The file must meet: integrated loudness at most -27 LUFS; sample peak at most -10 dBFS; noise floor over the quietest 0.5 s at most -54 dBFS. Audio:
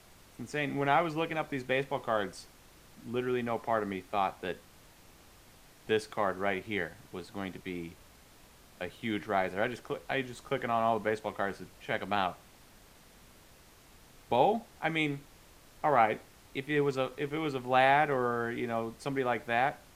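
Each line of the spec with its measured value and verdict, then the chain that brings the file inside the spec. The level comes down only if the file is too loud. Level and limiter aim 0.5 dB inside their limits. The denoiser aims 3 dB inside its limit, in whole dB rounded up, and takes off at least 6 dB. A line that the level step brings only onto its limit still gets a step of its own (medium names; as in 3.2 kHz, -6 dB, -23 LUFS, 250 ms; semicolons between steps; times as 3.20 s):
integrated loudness -32.0 LUFS: pass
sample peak -11.0 dBFS: pass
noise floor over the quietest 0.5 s -58 dBFS: pass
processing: none needed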